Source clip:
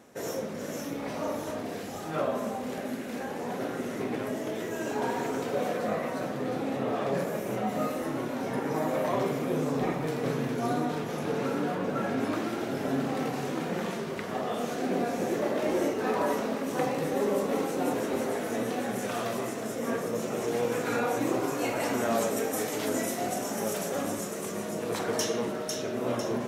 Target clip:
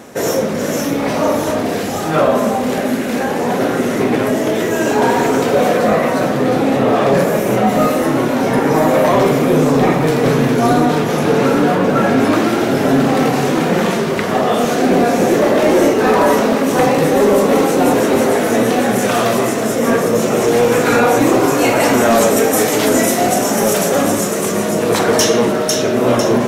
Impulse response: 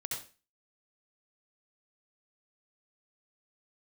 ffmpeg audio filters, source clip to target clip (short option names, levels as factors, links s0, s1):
-filter_complex "[0:a]apsyclip=12.6,asplit=2[s0][s1];[s1]asoftclip=type=tanh:threshold=0.141,volume=0.282[s2];[s0][s2]amix=inputs=2:normalize=0,volume=0.531"